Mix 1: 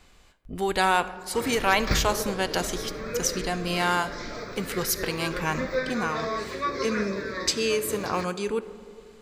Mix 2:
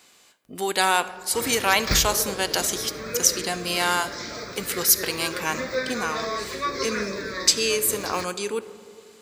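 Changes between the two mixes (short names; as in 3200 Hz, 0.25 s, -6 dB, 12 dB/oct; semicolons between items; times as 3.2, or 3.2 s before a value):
speech: add HPF 230 Hz 12 dB/oct; master: add high shelf 3900 Hz +11.5 dB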